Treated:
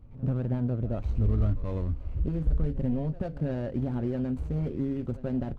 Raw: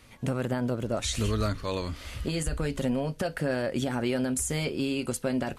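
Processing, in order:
running median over 25 samples
RIAA equalisation playback
soft clipping −9.5 dBFS, distortion −17 dB
echo ahead of the sound 88 ms −17 dB
level −7 dB

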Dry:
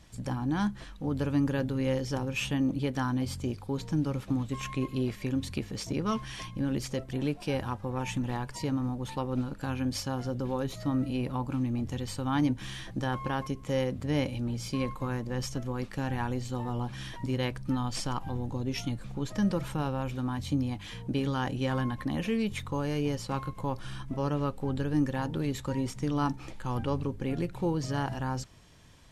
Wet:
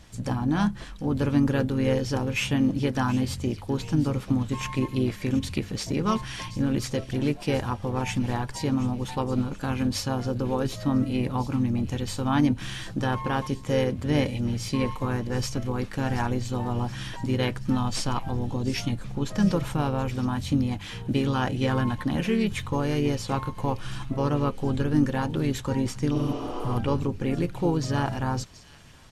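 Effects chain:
delay with a high-pass on its return 726 ms, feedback 53%, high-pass 2,700 Hz, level −14 dB
healed spectral selection 0:26.17–0:26.72, 270–8,800 Hz both
pitch-shifted copies added −3 semitones −8 dB
level +4.5 dB

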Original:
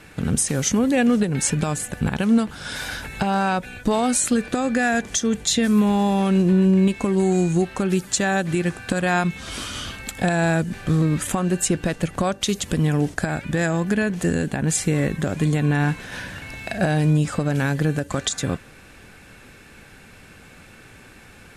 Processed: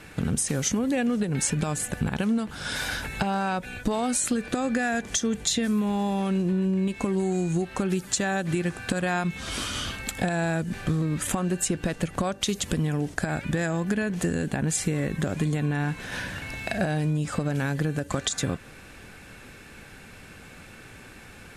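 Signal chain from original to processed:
downward compressor, threshold −22 dBFS, peak gain reduction 9 dB

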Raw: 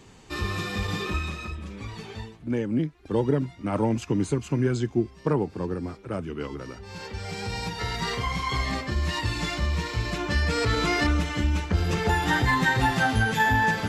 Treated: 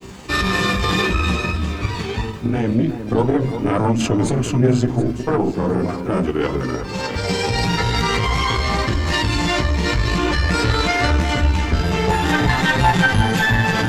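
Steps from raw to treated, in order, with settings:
harmonic generator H 4 −14 dB, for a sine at −9 dBFS
on a send at −11 dB: Butterworth high-pass 190 Hz 72 dB per octave + convolution reverb RT60 0.35 s, pre-delay 3 ms
on the sum: background noise pink −65 dBFS
chorus effect 0.18 Hz, delay 15.5 ms, depth 2.4 ms
granular cloud 100 ms, grains 20 per second, spray 27 ms, pitch spread up and down by 0 semitones
in parallel at −1 dB: compressor whose output falls as the input rises −35 dBFS, ratio −0.5
on the sum: delay that swaps between a low-pass and a high-pass 362 ms, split 1,800 Hz, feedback 51%, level −9.5 dB
level +8.5 dB

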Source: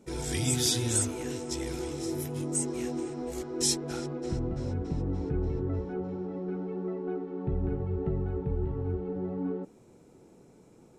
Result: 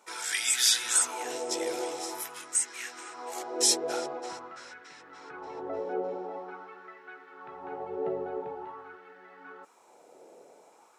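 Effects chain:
auto-filter high-pass sine 0.46 Hz 560–1,700 Hz
level +4 dB

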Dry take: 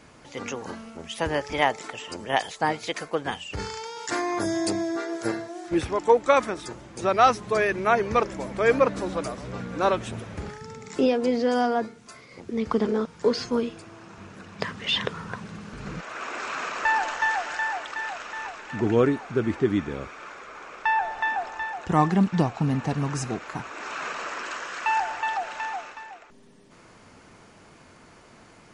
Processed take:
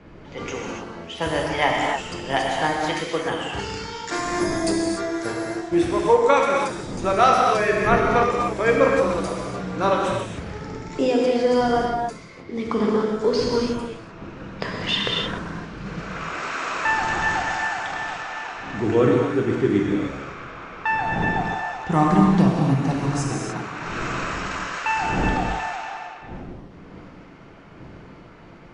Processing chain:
wind on the microphone 310 Hz −40 dBFS
reverb whose tail is shaped and stops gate 320 ms flat, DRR −2 dB
low-pass that shuts in the quiet parts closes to 2,600 Hz, open at −21.5 dBFS

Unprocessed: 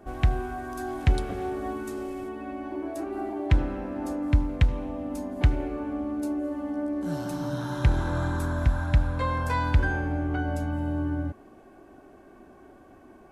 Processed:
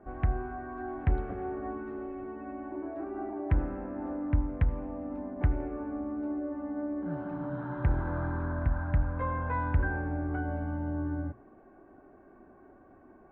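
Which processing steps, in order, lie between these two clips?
low-pass filter 1,900 Hz 24 dB per octave
mains-hum notches 60/120 Hz
level −4.5 dB

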